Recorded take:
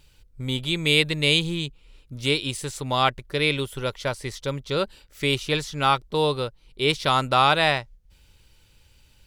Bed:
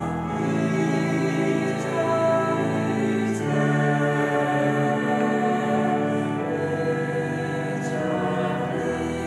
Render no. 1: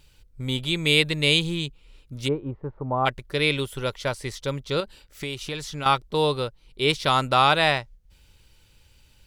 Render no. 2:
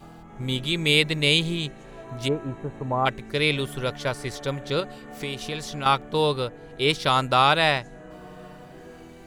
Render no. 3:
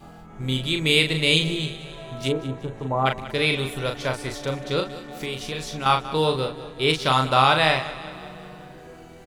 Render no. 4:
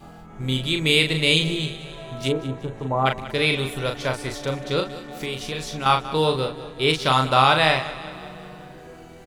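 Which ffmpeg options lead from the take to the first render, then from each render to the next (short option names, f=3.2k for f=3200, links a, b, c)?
-filter_complex "[0:a]asplit=3[a][b][c];[a]afade=t=out:st=2.27:d=0.02[d];[b]lowpass=f=1.1k:w=0.5412,lowpass=f=1.1k:w=1.3066,afade=t=in:st=2.27:d=0.02,afade=t=out:st=3.05:d=0.02[e];[c]afade=t=in:st=3.05:d=0.02[f];[d][e][f]amix=inputs=3:normalize=0,asettb=1/sr,asplit=3[g][h][i];[g]atrim=end=4.804[j];[h]atrim=start=4.8:end=5.86,asetpts=PTS-STARTPTS,afade=t=in:d=0.004:c=qsin,afade=t=out:st=1.056:d=0.004:c=qsin,acompressor=threshold=-29dB:ratio=3:attack=3.2:release=140:knee=1:detection=peak[k];[i]atrim=start=5.856[l];[j][k]acrossfade=d=0.004:c1=hsin:c2=qsin[m];[m][l]acrossfade=d=0.004:c1=qsin:c2=hsin"
-filter_complex "[1:a]volume=-19dB[a];[0:a][a]amix=inputs=2:normalize=0"
-filter_complex "[0:a]asplit=2[a][b];[b]adelay=38,volume=-5.5dB[c];[a][c]amix=inputs=2:normalize=0,aecho=1:1:188|376|564|752|940|1128:0.168|0.0957|0.0545|0.0311|0.0177|0.0101"
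-af "volume=1dB,alimiter=limit=-3dB:level=0:latency=1"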